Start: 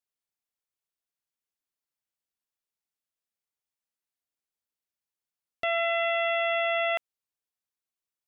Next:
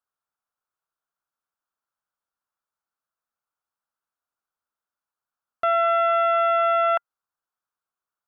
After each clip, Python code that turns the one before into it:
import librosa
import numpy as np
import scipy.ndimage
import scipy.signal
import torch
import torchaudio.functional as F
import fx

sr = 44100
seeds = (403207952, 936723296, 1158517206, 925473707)

y = fx.curve_eq(x, sr, hz=(400.0, 1400.0, 2000.0), db=(0, 14, -5))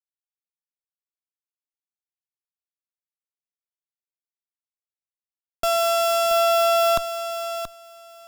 y = fx.schmitt(x, sr, flips_db=-33.0)
y = fx.echo_feedback(y, sr, ms=678, feedback_pct=17, wet_db=-9.5)
y = y * librosa.db_to_amplitude(8.0)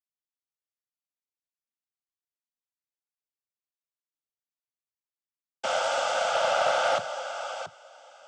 y = fx.noise_vocoder(x, sr, seeds[0], bands=16)
y = fx.doppler_dist(y, sr, depth_ms=0.15)
y = y * librosa.db_to_amplitude(-5.5)